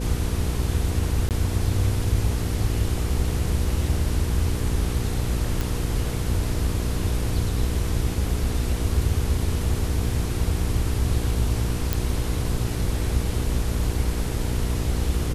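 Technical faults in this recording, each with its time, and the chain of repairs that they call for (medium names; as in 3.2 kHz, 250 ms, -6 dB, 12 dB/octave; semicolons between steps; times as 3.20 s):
hum 60 Hz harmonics 8 -28 dBFS
1.29–1.31 s: dropout 18 ms
5.61 s: pop
11.93 s: pop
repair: de-click; de-hum 60 Hz, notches 8; interpolate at 1.29 s, 18 ms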